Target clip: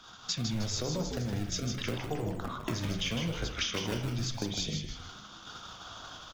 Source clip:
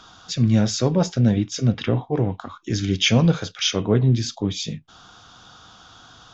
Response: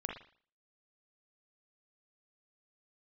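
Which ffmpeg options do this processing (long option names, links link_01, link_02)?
-filter_complex "[0:a]acrossover=split=320|640[link_01][link_02][link_03];[link_01]tremolo=f=8.8:d=0.54[link_04];[link_02]acrusher=samples=27:mix=1:aa=0.000001:lfo=1:lforange=43.2:lforate=0.8[link_05];[link_04][link_05][link_03]amix=inputs=3:normalize=0,alimiter=limit=-14.5dB:level=0:latency=1:release=76,acompressor=threshold=-36dB:ratio=8,bandreject=frequency=65.03:width_type=h:width=4,bandreject=frequency=130.06:width_type=h:width=4,bandreject=frequency=195.09:width_type=h:width=4,bandreject=frequency=260.12:width_type=h:width=4,bandreject=frequency=325.15:width_type=h:width=4,bandreject=frequency=390.18:width_type=h:width=4,bandreject=frequency=455.21:width_type=h:width=4,bandreject=frequency=520.24:width_type=h:width=4,bandreject=frequency=585.27:width_type=h:width=4,bandreject=frequency=650.3:width_type=h:width=4,bandreject=frequency=715.33:width_type=h:width=4,bandreject=frequency=780.36:width_type=h:width=4,bandreject=frequency=845.39:width_type=h:width=4,bandreject=frequency=910.42:width_type=h:width=4,bandreject=frequency=975.45:width_type=h:width=4,bandreject=frequency=1040.48:width_type=h:width=4,bandreject=frequency=1105.51:width_type=h:width=4,bandreject=frequency=1170.54:width_type=h:width=4,bandreject=frequency=1235.57:width_type=h:width=4,bandreject=frequency=1300.6:width_type=h:width=4,bandreject=frequency=1365.63:width_type=h:width=4,bandreject=frequency=1430.66:width_type=h:width=4,bandreject=frequency=1495.69:width_type=h:width=4,bandreject=frequency=1560.72:width_type=h:width=4,bandreject=frequency=1625.75:width_type=h:width=4,bandreject=frequency=1690.78:width_type=h:width=4,bandreject=frequency=1755.81:width_type=h:width=4,bandreject=frequency=1820.84:width_type=h:width=4,bandreject=frequency=1885.87:width_type=h:width=4,bandreject=frequency=1950.9:width_type=h:width=4,bandreject=frequency=2015.93:width_type=h:width=4,bandreject=frequency=2080.96:width_type=h:width=4,agate=range=-11dB:threshold=-47dB:ratio=16:detection=peak,asplit=6[link_06][link_07][link_08][link_09][link_10][link_11];[link_07]adelay=156,afreqshift=-120,volume=-5.5dB[link_12];[link_08]adelay=312,afreqshift=-240,volume=-12.6dB[link_13];[link_09]adelay=468,afreqshift=-360,volume=-19.8dB[link_14];[link_10]adelay=624,afreqshift=-480,volume=-26.9dB[link_15];[link_11]adelay=780,afreqshift=-600,volume=-34dB[link_16];[link_06][link_12][link_13][link_14][link_15][link_16]amix=inputs=6:normalize=0,asplit=2[link_17][link_18];[1:a]atrim=start_sample=2205[link_19];[link_18][link_19]afir=irnorm=-1:irlink=0,volume=-1dB[link_20];[link_17][link_20]amix=inputs=2:normalize=0"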